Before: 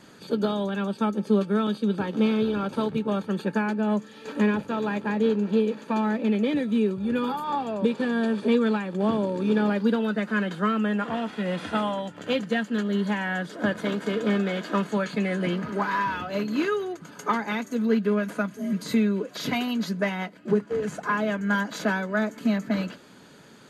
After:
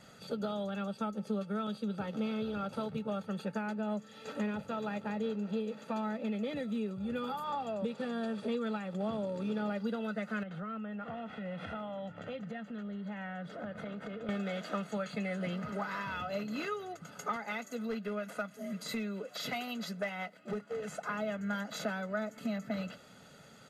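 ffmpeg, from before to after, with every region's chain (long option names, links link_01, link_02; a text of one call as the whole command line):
ffmpeg -i in.wav -filter_complex "[0:a]asettb=1/sr,asplit=3[link_01][link_02][link_03];[link_01]atrim=end=10.434[link_04];[link_02]atrim=start=10.43:end=14.29,asetpts=PTS-STARTPTS,afade=type=in:duration=0.004:curve=qsin,afade=type=out:start_time=3.856:duration=0.004:curve=qsin,bass=frequency=250:gain=3,treble=frequency=4000:gain=-15,acompressor=threshold=-32dB:ratio=5:attack=3.2:release=140:knee=1:detection=peak[link_05];[link_03]atrim=start=14.286[link_06];[link_04][link_05]acrossfade=duration=0.004:curve1=hsin:curve2=qsin[link_07];[link_07][link_06]acrossfade=duration=0.004:curve1=qsin:curve2=hsin,asettb=1/sr,asplit=3[link_08][link_09][link_10];[link_08]atrim=end=17.364[link_11];[link_09]atrim=start=17.36:end=21.09,asetpts=PTS-STARTPTS,afade=type=in:duration=0.004:curve=qsin,afade=type=out:start_time=3.726:duration=0.004:curve=qsin,highpass=frequency=320:poles=1,asoftclip=type=hard:threshold=-19dB[link_12];[link_10]atrim=start=21.086[link_13];[link_11][link_12]acrossfade=duration=0.004:curve1=hsin:curve2=qsin[link_14];[link_14][link_13]acrossfade=duration=0.004:curve1=qsin:curve2=hsin,aecho=1:1:1.5:0.63,acompressor=threshold=-30dB:ratio=2,volume=-6dB" out.wav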